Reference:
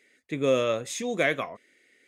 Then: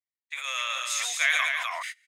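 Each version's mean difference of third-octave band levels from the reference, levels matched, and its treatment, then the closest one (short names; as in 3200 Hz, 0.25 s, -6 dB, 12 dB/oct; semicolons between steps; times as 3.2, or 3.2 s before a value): 16.0 dB: gate -50 dBFS, range -46 dB; Bessel high-pass 1600 Hz, order 8; loudspeakers at several distances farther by 51 m -9 dB, 88 m -6 dB; sustainer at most 24 dB/s; gain +5 dB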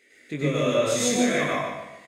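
9.5 dB: limiter -23 dBFS, peak gain reduction 11.5 dB; doubler 20 ms -3.5 dB; feedback echo 0.148 s, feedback 33%, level -7.5 dB; plate-style reverb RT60 0.6 s, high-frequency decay 0.9×, pre-delay 85 ms, DRR -6 dB; gain +1.5 dB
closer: second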